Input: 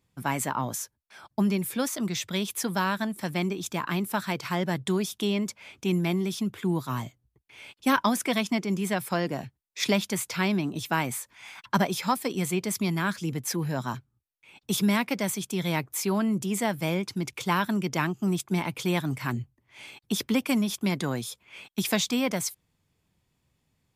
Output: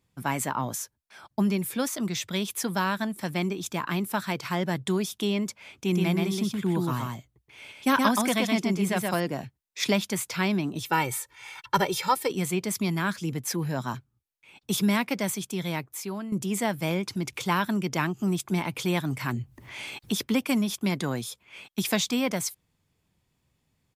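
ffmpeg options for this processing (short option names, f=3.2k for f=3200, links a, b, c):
-filter_complex "[0:a]asplit=3[a][b][c];[a]afade=t=out:st=5.85:d=0.02[d];[b]aecho=1:1:124:0.708,afade=t=in:st=5.85:d=0.02,afade=t=out:st=9.19:d=0.02[e];[c]afade=t=in:st=9.19:d=0.02[f];[d][e][f]amix=inputs=3:normalize=0,asettb=1/sr,asplit=3[g][h][i];[g]atrim=end=10.864[j];[h]atrim=start=10.86:end=12.31,asetpts=PTS-STARTPTS,afade=t=in:d=0.004:c=qsin,afade=t=out:st=1.446:d=0.004:c=qsin,aecho=1:1:2.2:0.8,atrim=end_sample=63945[k];[i]atrim=start=12.306[l];[j][k]acrossfade=d=0.004:c1=hsin:c2=qsin[m];[m][l]acrossfade=d=0.004:c1=qsin:c2=hsin,asettb=1/sr,asplit=3[n][o][p];[n]atrim=end=16.914[q];[o]atrim=start=16.91:end=20.21,asetpts=PTS-STARTPTS,afade=t=in:d=0.004:c=qsin,afade=t=out:st=3.296:d=0.004:c=qsin,acompressor=mode=upward:threshold=-28dB:ratio=2.5:attack=3.2:release=140:knee=2.83:detection=peak[r];[p]atrim=start=20.206[s];[q][r]acrossfade=d=0.004:c1=hsin:c2=qsin[t];[t][s]acrossfade=d=0.004:c1=qsin:c2=hsin,asplit=2[u][v];[u]atrim=end=16.32,asetpts=PTS-STARTPTS,afade=t=out:st=15.32:d=1:silence=0.266073[w];[v]atrim=start=16.32,asetpts=PTS-STARTPTS,afade=t=in:d=0.004:c=hsin:silence=0.266073[x];[w][x]concat=n=2:v=0:a=1"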